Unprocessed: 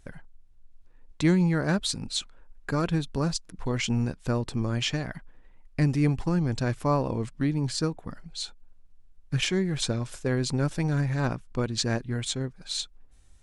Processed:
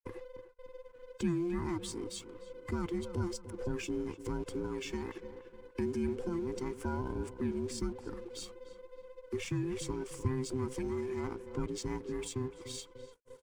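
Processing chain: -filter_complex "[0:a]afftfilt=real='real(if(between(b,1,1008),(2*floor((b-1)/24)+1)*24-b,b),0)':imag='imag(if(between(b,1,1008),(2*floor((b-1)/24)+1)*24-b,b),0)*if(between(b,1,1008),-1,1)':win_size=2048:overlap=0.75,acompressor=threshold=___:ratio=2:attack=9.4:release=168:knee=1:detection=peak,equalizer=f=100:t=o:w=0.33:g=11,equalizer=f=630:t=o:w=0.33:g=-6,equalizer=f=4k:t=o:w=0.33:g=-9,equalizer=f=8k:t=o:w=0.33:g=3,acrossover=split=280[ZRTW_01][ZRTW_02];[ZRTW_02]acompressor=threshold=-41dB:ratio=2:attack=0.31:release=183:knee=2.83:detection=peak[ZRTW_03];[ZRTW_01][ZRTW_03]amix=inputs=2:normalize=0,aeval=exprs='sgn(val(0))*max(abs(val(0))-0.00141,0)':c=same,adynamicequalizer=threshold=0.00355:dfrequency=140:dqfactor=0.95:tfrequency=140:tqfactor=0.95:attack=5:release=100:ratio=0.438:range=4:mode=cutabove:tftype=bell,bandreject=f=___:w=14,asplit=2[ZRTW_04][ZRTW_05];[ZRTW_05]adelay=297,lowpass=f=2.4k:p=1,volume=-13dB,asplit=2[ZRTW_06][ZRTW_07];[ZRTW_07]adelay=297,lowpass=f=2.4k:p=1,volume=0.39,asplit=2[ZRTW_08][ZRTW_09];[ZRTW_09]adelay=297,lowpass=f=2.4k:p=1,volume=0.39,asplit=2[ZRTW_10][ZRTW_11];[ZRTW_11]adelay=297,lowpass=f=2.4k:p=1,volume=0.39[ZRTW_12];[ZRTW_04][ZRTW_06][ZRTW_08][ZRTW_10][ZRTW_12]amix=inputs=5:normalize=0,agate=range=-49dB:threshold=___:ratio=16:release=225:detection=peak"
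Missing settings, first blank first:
-31dB, 1.9k, -55dB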